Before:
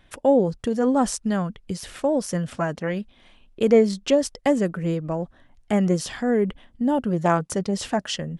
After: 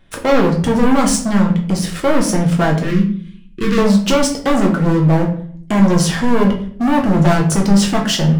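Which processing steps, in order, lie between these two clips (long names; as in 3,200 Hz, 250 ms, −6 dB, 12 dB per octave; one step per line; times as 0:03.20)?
parametric band 230 Hz +5.5 dB 1.8 octaves
leveller curve on the samples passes 2
soft clipping −17.5 dBFS, distortion −8 dB
0:02.83–0:03.78: Butterworth band-reject 690 Hz, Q 0.75
rectangular room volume 64 cubic metres, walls mixed, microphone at 0.7 metres
level +3.5 dB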